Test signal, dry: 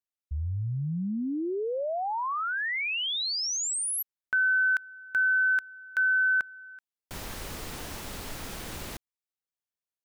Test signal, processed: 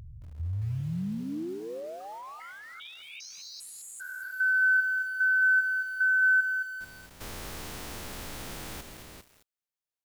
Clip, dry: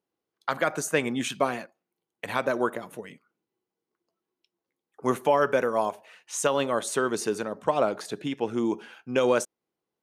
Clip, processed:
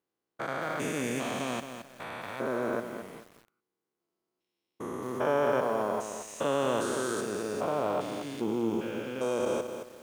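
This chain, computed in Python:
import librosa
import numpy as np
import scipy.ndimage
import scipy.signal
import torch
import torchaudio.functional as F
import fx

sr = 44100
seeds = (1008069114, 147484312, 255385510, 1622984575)

y = fx.spec_steps(x, sr, hold_ms=400)
y = fx.echo_crushed(y, sr, ms=219, feedback_pct=35, bits=8, wet_db=-8.0)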